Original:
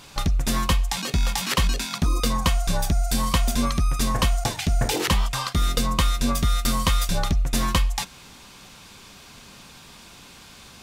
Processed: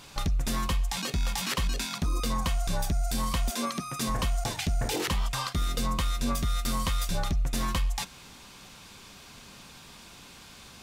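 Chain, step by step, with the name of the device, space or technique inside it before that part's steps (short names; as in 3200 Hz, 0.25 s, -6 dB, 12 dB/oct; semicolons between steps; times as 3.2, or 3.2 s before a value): 3.49–4.08 HPF 340 Hz -> 91 Hz 24 dB/oct; soft clipper into limiter (soft clip -12 dBFS, distortion -24 dB; limiter -18 dBFS, peak gain reduction 4.5 dB); gain -3 dB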